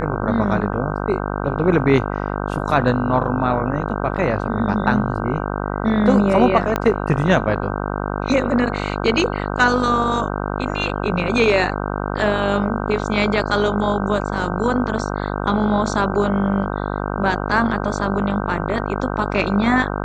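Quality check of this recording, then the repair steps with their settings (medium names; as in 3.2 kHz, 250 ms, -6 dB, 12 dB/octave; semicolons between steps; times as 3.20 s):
buzz 50 Hz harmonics 31 -24 dBFS
6.76 s: pop -6 dBFS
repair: de-click; de-hum 50 Hz, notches 31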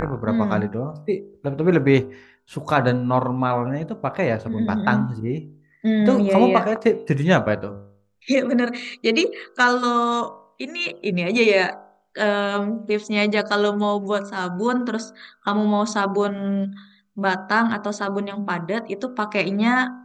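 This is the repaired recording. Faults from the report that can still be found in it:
6.76 s: pop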